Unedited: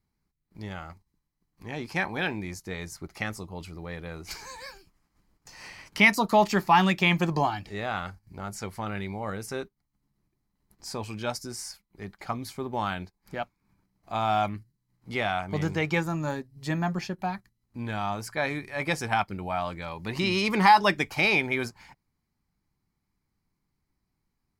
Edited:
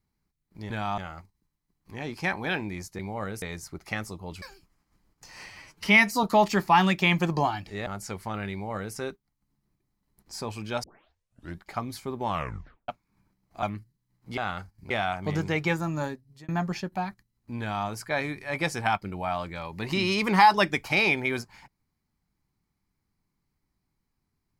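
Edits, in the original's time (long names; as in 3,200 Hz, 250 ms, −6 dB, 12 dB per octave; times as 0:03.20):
0:03.71–0:04.66: remove
0:05.74–0:06.23: time-stretch 1.5×
0:07.86–0:08.39: move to 0:15.17
0:09.05–0:09.48: duplicate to 0:02.71
0:11.36: tape start 0.80 s
0:12.81: tape stop 0.60 s
0:14.15–0:14.42: remove
0:16.32–0:16.75: fade out
0:17.86–0:18.14: duplicate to 0:00.70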